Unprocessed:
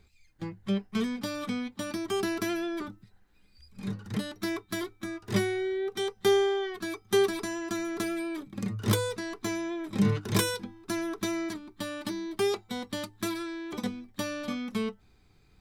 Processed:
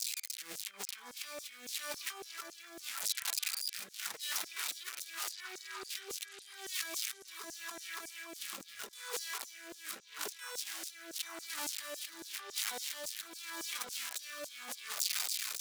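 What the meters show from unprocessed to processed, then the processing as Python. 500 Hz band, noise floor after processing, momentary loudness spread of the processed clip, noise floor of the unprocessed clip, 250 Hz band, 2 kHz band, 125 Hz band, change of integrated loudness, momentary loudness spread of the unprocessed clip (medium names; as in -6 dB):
-22.0 dB, -55 dBFS, 10 LU, -62 dBFS, -27.0 dB, -6.0 dB, under -35 dB, -8.0 dB, 11 LU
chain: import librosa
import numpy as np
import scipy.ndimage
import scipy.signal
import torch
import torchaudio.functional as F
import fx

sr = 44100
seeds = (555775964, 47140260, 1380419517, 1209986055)

y = x + 0.5 * 10.0 ** (-25.0 / 20.0) * np.diff(np.sign(x), prepend=np.sign(x[:1]))
y = scipy.signal.sosfilt(scipy.signal.butter(2, 93.0, 'highpass', fs=sr, output='sos'), y)
y = fx.high_shelf(y, sr, hz=11000.0, db=-6.5)
y = fx.over_compress(y, sr, threshold_db=-40.0, ratio=-1.0)
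y = fx.echo_stepped(y, sr, ms=570, hz=1200.0, octaves=0.7, feedback_pct=70, wet_db=-4.5)
y = fx.rotary(y, sr, hz=0.85)
y = fx.filter_lfo_highpass(y, sr, shape='saw_down', hz=3.6, low_hz=490.0, high_hz=7000.0, q=1.8)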